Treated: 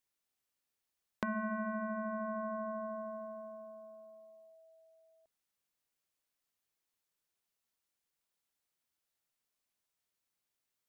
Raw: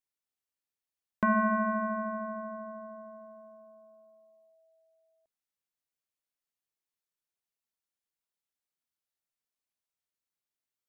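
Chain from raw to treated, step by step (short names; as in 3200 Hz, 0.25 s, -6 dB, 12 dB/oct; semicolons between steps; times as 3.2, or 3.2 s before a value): dynamic EQ 990 Hz, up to -5 dB, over -40 dBFS, Q 2.4; compressor 4:1, threshold -42 dBFS, peak gain reduction 15 dB; gain +4.5 dB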